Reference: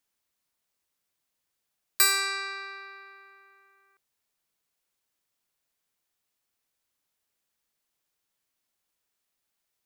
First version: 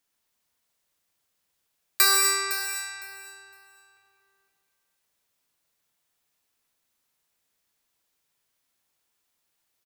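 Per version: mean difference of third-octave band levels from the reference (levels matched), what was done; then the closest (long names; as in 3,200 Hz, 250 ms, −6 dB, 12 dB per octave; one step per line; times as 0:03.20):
8.0 dB: amplitude modulation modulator 290 Hz, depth 15%
repeating echo 509 ms, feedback 19%, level −10.5 dB
reverb whose tail is shaped and stops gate 270 ms flat, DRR 0.5 dB
level +3 dB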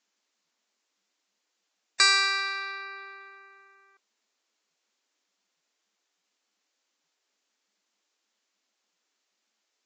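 3.0 dB: mains-hum notches 60/120/180/240 Hz
dynamic equaliser 440 Hz, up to −7 dB, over −50 dBFS, Q 1.1
level +5 dB
Ogg Vorbis 48 kbit/s 16,000 Hz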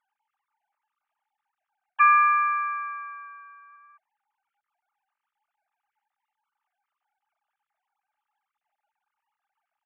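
11.0 dB: three sine waves on the formant tracks
low-pass filter 2,500 Hz 12 dB per octave
hollow resonant body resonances 230/600/840/1,200 Hz, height 13 dB, ringing for 25 ms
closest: second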